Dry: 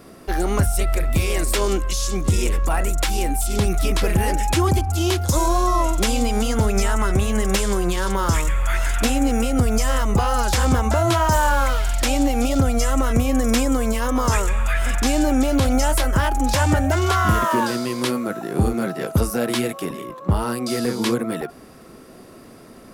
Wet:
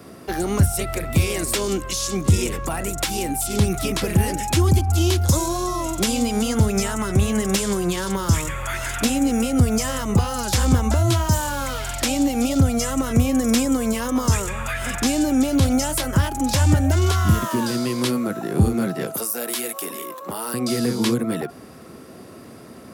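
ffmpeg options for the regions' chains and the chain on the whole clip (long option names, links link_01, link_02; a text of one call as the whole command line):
ffmpeg -i in.wav -filter_complex "[0:a]asettb=1/sr,asplit=3[link_01][link_02][link_03];[link_01]atrim=end=19.144[link_04];[link_02]atrim=start=19.14:end=20.54,asetpts=PTS-STARTPTS,afade=type=in:duration=0.004:curve=qsin,afade=type=out:start_time=1.396:duration=0.004:curve=qsin,highpass=240,aemphasis=mode=production:type=bsi,acompressor=threshold=-29dB:ratio=2:attack=3.2:release=140:knee=1:detection=peak[link_05];[link_03]atrim=start=20.536[link_06];[link_04][link_05]acrossfade=duration=0.004:curve1=hsin:curve2=qsin[link_07];[link_07][link_06]acrossfade=duration=0.004:curve1=qsin:curve2=hsin,highpass=frequency=73:width=0.5412,highpass=frequency=73:width=1.3066,lowshelf=frequency=150:gain=4,acrossover=split=330|3000[link_08][link_09][link_10];[link_09]acompressor=threshold=-28dB:ratio=6[link_11];[link_08][link_11][link_10]amix=inputs=3:normalize=0,volume=1.5dB" out.wav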